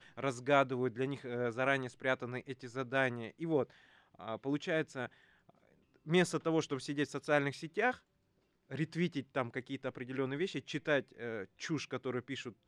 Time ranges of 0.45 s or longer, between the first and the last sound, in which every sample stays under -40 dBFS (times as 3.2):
3.63–4.21
5.06–6.08
7.94–8.71